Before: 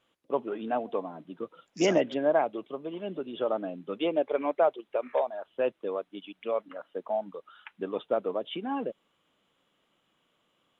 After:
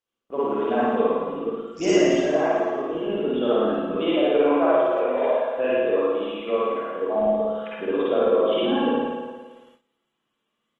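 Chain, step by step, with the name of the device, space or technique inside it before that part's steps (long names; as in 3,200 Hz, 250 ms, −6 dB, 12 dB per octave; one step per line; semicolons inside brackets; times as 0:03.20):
0:05.28–0:05.86: hum removal 49.84 Hz, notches 5
dynamic equaliser 880 Hz, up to −7 dB, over −49 dBFS, Q 6
flutter between parallel walls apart 9.6 metres, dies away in 1.3 s
speakerphone in a meeting room (convolution reverb RT60 0.60 s, pre-delay 45 ms, DRR −6 dB; far-end echo of a speakerphone 230 ms, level −14 dB; automatic gain control gain up to 6 dB; noise gate −48 dBFS, range −16 dB; level −5 dB; Opus 20 kbit/s 48,000 Hz)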